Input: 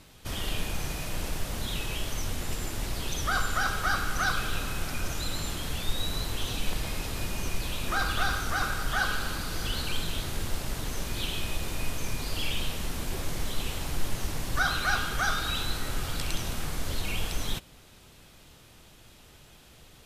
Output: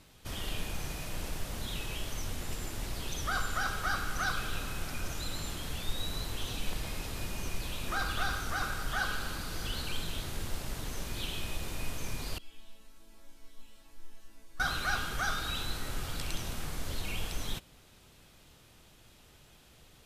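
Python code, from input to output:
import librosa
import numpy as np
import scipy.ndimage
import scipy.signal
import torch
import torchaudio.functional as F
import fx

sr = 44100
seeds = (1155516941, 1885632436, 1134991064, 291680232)

y = fx.resonator_bank(x, sr, root=57, chord='major', decay_s=0.48, at=(12.38, 14.6))
y = y * librosa.db_to_amplitude(-5.0)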